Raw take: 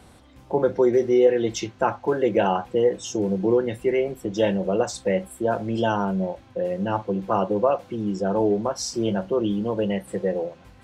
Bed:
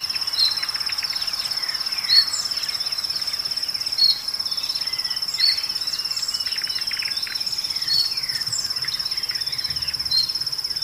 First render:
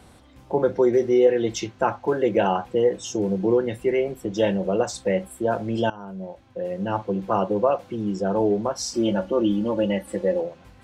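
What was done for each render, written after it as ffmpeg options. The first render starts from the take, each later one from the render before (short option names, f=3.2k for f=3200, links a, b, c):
-filter_complex "[0:a]asettb=1/sr,asplit=3[a][b][c];[a]atrim=end=8.944[d];[b]atrim=start=8.94:end=10.41,asetpts=PTS-STARTPTS,afade=t=in:d=0.004:c=qsin,afade=t=out:st=1.466:d=0.004:c=qsin,aecho=1:1:3.5:0.78,atrim=end_sample=64827[e];[c]atrim=start=10.406[f];[d][e]acrossfade=d=0.004:c1=hsin:c2=qsin[g];[g][f]acrossfade=d=0.004:c1=qsin:c2=hsin,asplit=2[h][i];[h]atrim=end=5.9,asetpts=PTS-STARTPTS,afade=t=out:st=5.896:d=0.004:c=hsin:silence=0.105925[j];[i]atrim=start=5.9,asetpts=PTS-STARTPTS,afade=t=in:d=1.13:silence=0.105925[k];[j][k]concat=n=2:v=0:a=1"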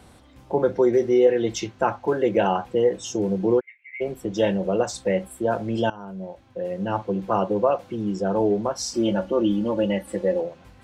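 -filter_complex "[0:a]asplit=3[a][b][c];[a]afade=t=out:st=3.59:d=0.02[d];[b]asuperpass=centerf=2200:order=4:qfactor=6.3,afade=t=in:st=3.59:d=0.02,afade=t=out:st=4:d=0.02[e];[c]afade=t=in:st=4:d=0.02[f];[d][e][f]amix=inputs=3:normalize=0"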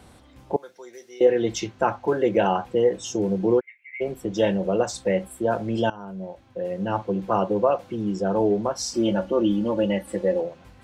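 -filter_complex "[0:a]asettb=1/sr,asplit=3[a][b][c];[a]atrim=end=0.564[d];[b]atrim=start=0.56:end=1.21,asetpts=PTS-STARTPTS,afade=t=in:d=0.004:c=qsin,afade=t=out:st=0.646:d=0.004:c=qsin,aderivative[e];[c]atrim=start=1.206[f];[d][e]acrossfade=d=0.004:c1=hsin:c2=qsin[g];[g][f]acrossfade=d=0.004:c1=qsin:c2=hsin"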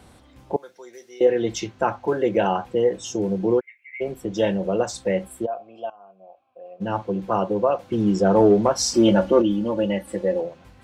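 -filter_complex "[0:a]asplit=3[a][b][c];[a]afade=t=out:st=5.45:d=0.02[d];[b]asplit=3[e][f][g];[e]bandpass=f=730:t=q:w=8,volume=0dB[h];[f]bandpass=f=1.09k:t=q:w=8,volume=-6dB[i];[g]bandpass=f=2.44k:t=q:w=8,volume=-9dB[j];[h][i][j]amix=inputs=3:normalize=0,afade=t=in:st=5.45:d=0.02,afade=t=out:st=6.8:d=0.02[k];[c]afade=t=in:st=6.8:d=0.02[l];[d][k][l]amix=inputs=3:normalize=0,asettb=1/sr,asplit=3[m][n][o];[m]atrim=end=7.924[p];[n]atrim=start=7.92:end=9.42,asetpts=PTS-STARTPTS,afade=t=in:d=0.004:c=qsin,afade=t=out:st=1.496:d=0.004:c=qsin,acontrast=66[q];[o]atrim=start=9.416[r];[p][q]acrossfade=d=0.004:c1=hsin:c2=qsin[s];[s][r]acrossfade=d=0.004:c1=qsin:c2=hsin"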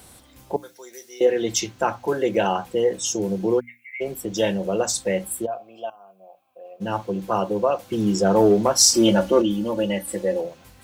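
-af "aemphasis=mode=production:type=75fm,bandreject=f=60:t=h:w=6,bandreject=f=120:t=h:w=6,bandreject=f=180:t=h:w=6,bandreject=f=240:t=h:w=6,bandreject=f=300:t=h:w=6"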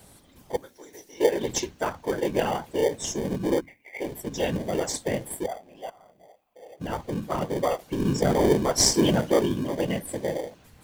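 -filter_complex "[0:a]afftfilt=real='hypot(re,im)*cos(2*PI*random(0))':imag='hypot(re,im)*sin(2*PI*random(1))':win_size=512:overlap=0.75,asplit=2[a][b];[b]acrusher=samples=33:mix=1:aa=0.000001,volume=-8dB[c];[a][c]amix=inputs=2:normalize=0"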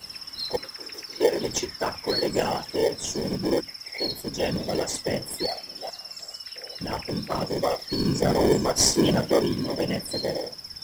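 -filter_complex "[1:a]volume=-14dB[a];[0:a][a]amix=inputs=2:normalize=0"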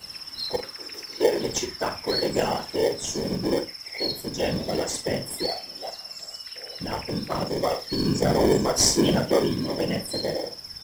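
-filter_complex "[0:a]asplit=2[a][b];[b]adelay=44,volume=-9dB[c];[a][c]amix=inputs=2:normalize=0,aecho=1:1:83:0.0891"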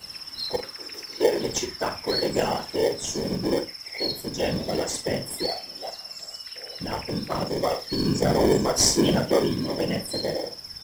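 -af anull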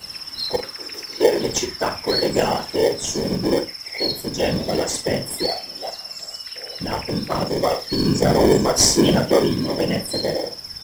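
-af "volume=5dB,alimiter=limit=-2dB:level=0:latency=1"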